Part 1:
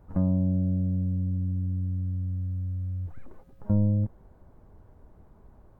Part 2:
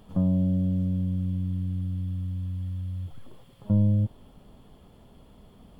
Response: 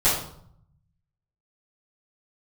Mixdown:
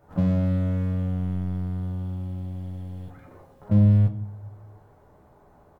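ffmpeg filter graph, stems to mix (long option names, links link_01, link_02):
-filter_complex "[0:a]highpass=frequency=460:poles=1,acompressor=threshold=-42dB:ratio=6,volume=1dB,asplit=2[link_01][link_02];[link_02]volume=-11dB[link_03];[1:a]highpass=frequency=170:poles=1,lowshelf=frequency=310:gain=11,aeval=exprs='sgn(val(0))*max(abs(val(0))-0.0158,0)':channel_layout=same,volume=-1,adelay=14,volume=-1.5dB,asplit=2[link_04][link_05];[link_05]volume=-23.5dB[link_06];[2:a]atrim=start_sample=2205[link_07];[link_03][link_06]amix=inputs=2:normalize=0[link_08];[link_08][link_07]afir=irnorm=-1:irlink=0[link_09];[link_01][link_04][link_09]amix=inputs=3:normalize=0"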